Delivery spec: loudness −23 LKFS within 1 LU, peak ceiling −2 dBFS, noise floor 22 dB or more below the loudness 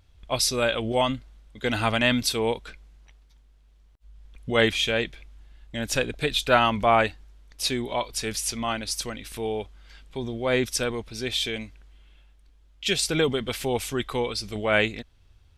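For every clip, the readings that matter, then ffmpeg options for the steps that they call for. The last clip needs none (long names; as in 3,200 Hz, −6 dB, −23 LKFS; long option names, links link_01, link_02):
integrated loudness −25.5 LKFS; sample peak −5.0 dBFS; target loudness −23.0 LKFS
→ -af "volume=2.5dB"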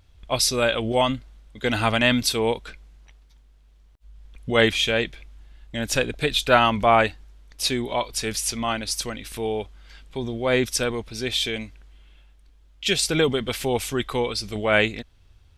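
integrated loudness −23.0 LKFS; sample peak −2.5 dBFS; background noise floor −54 dBFS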